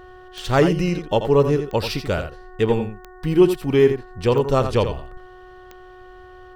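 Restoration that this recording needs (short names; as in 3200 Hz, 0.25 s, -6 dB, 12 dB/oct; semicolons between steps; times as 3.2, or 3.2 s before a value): de-click; de-hum 367.2 Hz, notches 5; inverse comb 85 ms -9 dB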